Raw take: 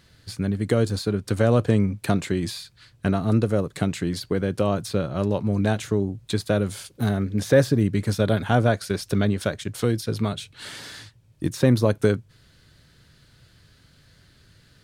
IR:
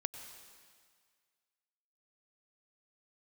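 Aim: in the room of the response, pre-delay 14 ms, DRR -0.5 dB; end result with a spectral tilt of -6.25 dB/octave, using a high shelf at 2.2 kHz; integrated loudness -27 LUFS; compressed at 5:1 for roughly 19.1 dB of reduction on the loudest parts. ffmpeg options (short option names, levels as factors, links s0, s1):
-filter_complex "[0:a]highshelf=f=2200:g=-9,acompressor=threshold=0.0178:ratio=5,asplit=2[s0][s1];[1:a]atrim=start_sample=2205,adelay=14[s2];[s1][s2]afir=irnorm=-1:irlink=0,volume=1.12[s3];[s0][s3]amix=inputs=2:normalize=0,volume=2.99"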